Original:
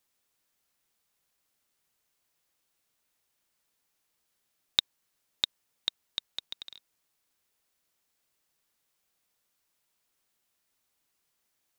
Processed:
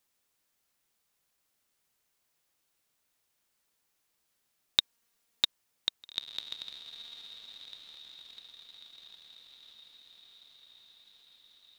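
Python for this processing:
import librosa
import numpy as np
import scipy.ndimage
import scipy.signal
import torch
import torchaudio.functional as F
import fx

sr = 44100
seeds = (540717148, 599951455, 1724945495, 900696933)

y = fx.comb(x, sr, ms=4.3, depth=0.71, at=(4.79, 5.44), fade=0.02)
y = fx.echo_diffused(y, sr, ms=1694, feedback_pct=55, wet_db=-12)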